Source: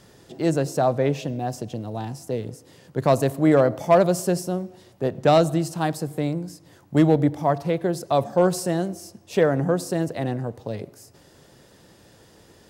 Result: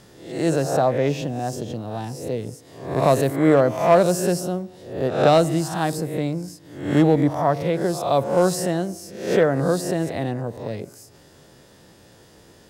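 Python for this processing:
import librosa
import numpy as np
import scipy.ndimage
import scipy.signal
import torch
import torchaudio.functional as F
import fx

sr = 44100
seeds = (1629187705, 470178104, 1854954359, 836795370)

y = fx.spec_swells(x, sr, rise_s=0.59)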